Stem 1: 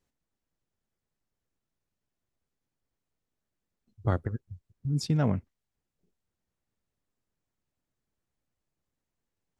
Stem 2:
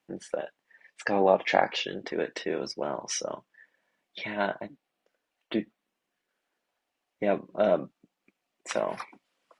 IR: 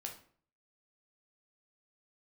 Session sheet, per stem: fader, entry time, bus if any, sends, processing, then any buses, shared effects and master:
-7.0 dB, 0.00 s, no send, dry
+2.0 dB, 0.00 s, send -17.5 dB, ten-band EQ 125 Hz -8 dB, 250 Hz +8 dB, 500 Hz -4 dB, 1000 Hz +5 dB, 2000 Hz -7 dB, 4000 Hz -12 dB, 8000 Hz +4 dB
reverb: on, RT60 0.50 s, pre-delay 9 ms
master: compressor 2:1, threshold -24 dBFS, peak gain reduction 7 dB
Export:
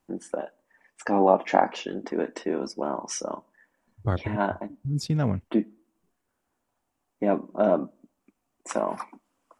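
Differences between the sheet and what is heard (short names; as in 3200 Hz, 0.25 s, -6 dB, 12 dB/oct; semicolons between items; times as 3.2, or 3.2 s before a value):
stem 1 -7.0 dB -> +1.0 dB; master: missing compressor 2:1, threshold -24 dBFS, peak gain reduction 7 dB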